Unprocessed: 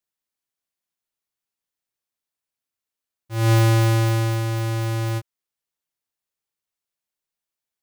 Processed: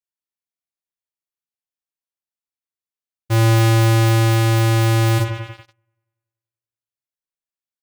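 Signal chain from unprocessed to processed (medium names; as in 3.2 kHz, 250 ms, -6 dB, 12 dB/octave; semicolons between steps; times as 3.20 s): doubling 40 ms -7 dB; bucket-brigade echo 95 ms, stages 2048, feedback 67%, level -11 dB; waveshaping leveller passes 5; trim -1 dB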